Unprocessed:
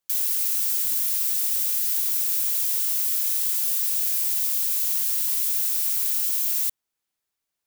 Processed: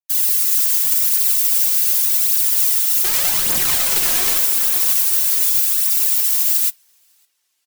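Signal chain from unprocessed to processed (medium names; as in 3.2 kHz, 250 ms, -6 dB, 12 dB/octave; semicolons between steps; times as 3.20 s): steep high-pass 690 Hz 72 dB/octave; comb 4.5 ms, depth 64%; in parallel at -2 dB: peak limiter -16.5 dBFS, peak gain reduction 7.5 dB; 3.04–4.38 s: on the sum: integer overflow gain 12 dB; phaser 0.85 Hz, delay 3.2 ms, feedback 53%; on a send: tape echo 554 ms, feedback 48%, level -6.5 dB, low-pass 5.5 kHz; on the sum: simulated room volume 950 m³, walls furnished, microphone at 0.92 m; upward expansion 2.5:1, over -33 dBFS; trim +2 dB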